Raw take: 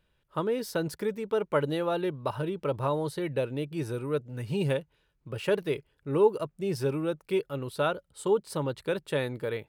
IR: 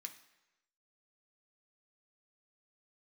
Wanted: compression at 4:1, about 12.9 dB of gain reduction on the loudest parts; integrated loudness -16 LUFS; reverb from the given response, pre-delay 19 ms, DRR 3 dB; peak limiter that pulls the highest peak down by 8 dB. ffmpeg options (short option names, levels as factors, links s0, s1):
-filter_complex "[0:a]acompressor=threshold=0.0224:ratio=4,alimiter=level_in=1.88:limit=0.0631:level=0:latency=1,volume=0.531,asplit=2[s0][s1];[1:a]atrim=start_sample=2205,adelay=19[s2];[s1][s2]afir=irnorm=-1:irlink=0,volume=1.26[s3];[s0][s3]amix=inputs=2:normalize=0,volume=13.3"